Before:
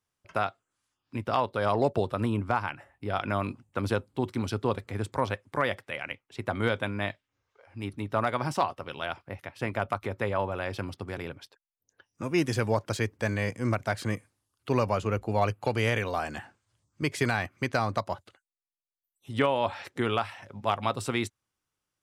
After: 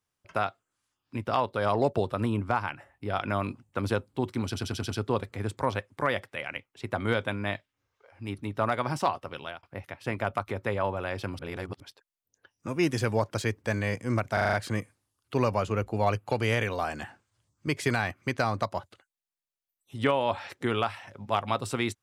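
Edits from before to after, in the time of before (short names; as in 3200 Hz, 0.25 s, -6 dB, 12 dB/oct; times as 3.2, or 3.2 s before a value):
4.45 stutter 0.09 s, 6 plays
8.83–9.18 fade out equal-power
10.94–11.35 reverse
13.88 stutter 0.04 s, 6 plays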